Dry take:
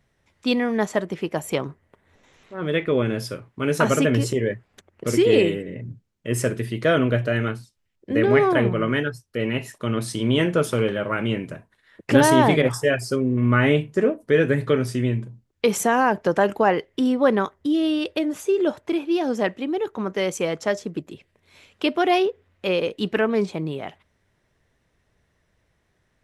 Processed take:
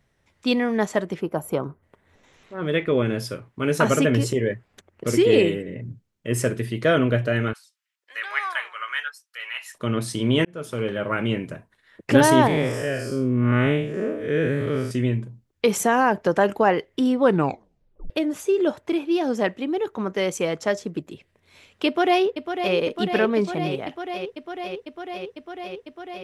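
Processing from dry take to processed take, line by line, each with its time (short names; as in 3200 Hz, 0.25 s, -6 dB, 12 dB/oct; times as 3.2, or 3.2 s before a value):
1.2–1.83 spectral gain 1600–10000 Hz -11 dB
7.53–9.75 HPF 1100 Hz 24 dB/oct
10.45–11.08 fade in
12.47–14.91 time blur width 0.173 s
17.21 tape stop 0.89 s
21.86–22.75 echo throw 0.5 s, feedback 85%, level -8 dB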